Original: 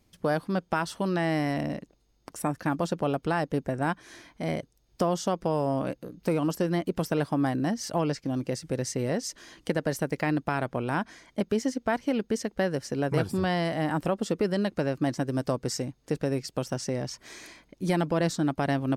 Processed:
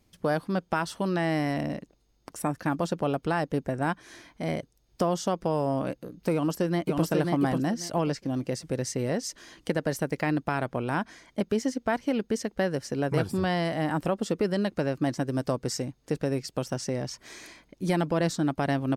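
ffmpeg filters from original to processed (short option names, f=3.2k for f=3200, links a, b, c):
-filter_complex "[0:a]asplit=2[a][b];[b]afade=t=in:st=6.33:d=0.01,afade=t=out:st=7.03:d=0.01,aecho=0:1:540|1080|1620:0.749894|0.149979|0.0299958[c];[a][c]amix=inputs=2:normalize=0"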